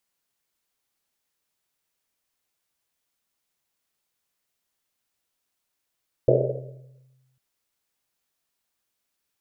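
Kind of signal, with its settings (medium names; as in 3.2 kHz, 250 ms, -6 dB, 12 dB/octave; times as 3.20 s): Risset drum, pitch 130 Hz, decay 1.43 s, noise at 500 Hz, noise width 220 Hz, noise 70%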